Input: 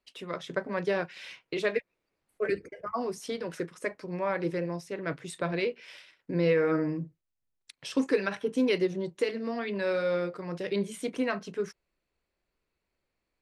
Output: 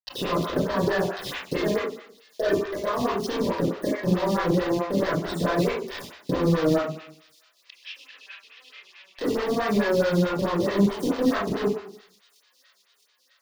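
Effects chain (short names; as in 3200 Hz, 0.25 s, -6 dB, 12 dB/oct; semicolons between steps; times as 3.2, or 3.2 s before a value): bin magnitudes rounded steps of 30 dB; sample leveller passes 2; compressor 10:1, threshold -39 dBFS, peak gain reduction 20.5 dB; bit-crush 7-bit; 6.78–9.18 ladder band-pass 2900 Hz, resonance 60%; thin delay 0.665 s, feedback 68%, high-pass 3400 Hz, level -18.5 dB; reverb RT60 0.70 s, pre-delay 25 ms, DRR -7 dB; photocell phaser 4.6 Hz; gain +6.5 dB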